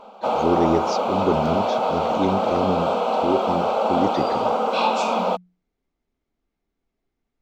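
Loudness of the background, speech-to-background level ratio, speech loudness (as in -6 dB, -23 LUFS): -22.0 LUFS, -4.0 dB, -26.0 LUFS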